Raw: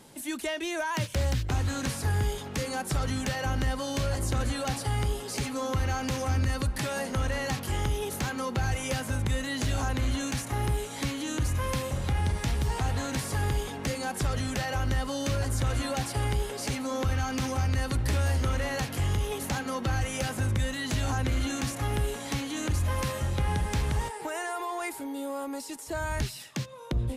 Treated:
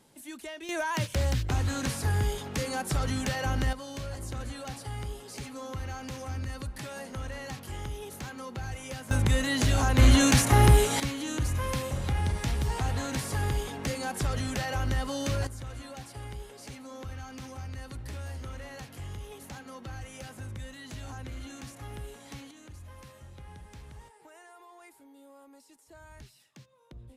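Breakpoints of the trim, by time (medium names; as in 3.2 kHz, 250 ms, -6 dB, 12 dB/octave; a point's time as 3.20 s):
-9 dB
from 0.69 s 0 dB
from 3.73 s -8.5 dB
from 9.11 s +4 dB
from 9.98 s +10.5 dB
from 11.00 s -1 dB
from 15.47 s -12.5 dB
from 22.51 s -19.5 dB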